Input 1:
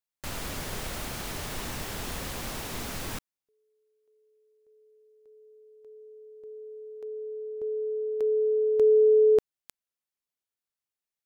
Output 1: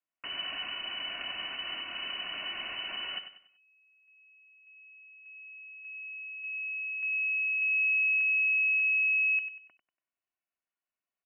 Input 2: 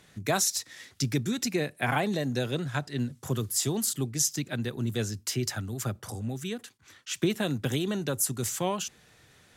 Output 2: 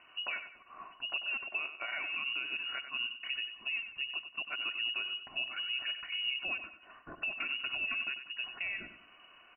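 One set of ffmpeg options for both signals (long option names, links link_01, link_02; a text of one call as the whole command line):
ffmpeg -i in.wav -af "aecho=1:1:2.6:0.61,acompressor=threshold=-28dB:ratio=2:attack=22:release=341,alimiter=level_in=2.5dB:limit=-24dB:level=0:latency=1:release=315,volume=-2.5dB,aecho=1:1:95|190|285|380:0.316|0.114|0.041|0.0148,lowpass=frequency=2600:width_type=q:width=0.5098,lowpass=frequency=2600:width_type=q:width=0.6013,lowpass=frequency=2600:width_type=q:width=0.9,lowpass=frequency=2600:width_type=q:width=2.563,afreqshift=-3000" out.wav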